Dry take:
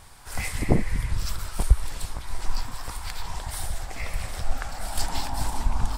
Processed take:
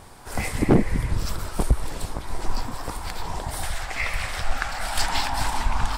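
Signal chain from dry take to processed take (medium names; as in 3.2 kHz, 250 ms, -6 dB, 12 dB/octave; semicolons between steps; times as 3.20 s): peaking EQ 350 Hz +11 dB 2.8 oct, from 3.63 s 2 kHz; overload inside the chain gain 10 dB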